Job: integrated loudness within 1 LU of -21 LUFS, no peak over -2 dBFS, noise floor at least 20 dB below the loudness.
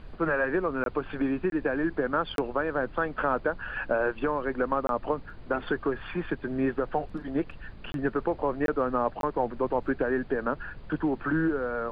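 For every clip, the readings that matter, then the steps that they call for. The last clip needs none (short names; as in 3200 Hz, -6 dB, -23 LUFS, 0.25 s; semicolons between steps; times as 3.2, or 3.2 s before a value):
dropouts 7; longest dropout 22 ms; noise floor -46 dBFS; noise floor target -50 dBFS; loudness -29.5 LUFS; peak -12.5 dBFS; loudness target -21.0 LUFS
-> interpolate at 0.84/1.5/2.36/4.87/7.92/8.66/9.21, 22 ms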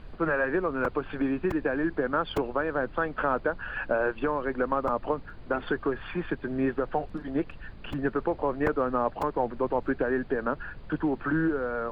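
dropouts 0; noise floor -45 dBFS; noise floor target -50 dBFS
-> noise print and reduce 6 dB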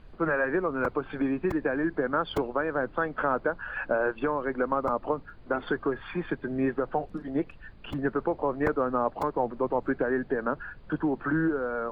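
noise floor -49 dBFS; noise floor target -50 dBFS
-> noise print and reduce 6 dB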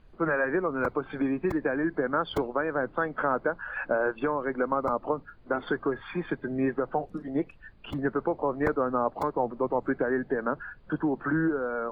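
noise floor -53 dBFS; loudness -29.5 LUFS; peak -13.0 dBFS; loudness target -21.0 LUFS
-> gain +8.5 dB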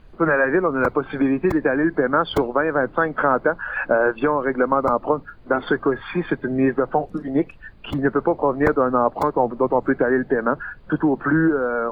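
loudness -21.0 LUFS; peak -4.5 dBFS; noise floor -45 dBFS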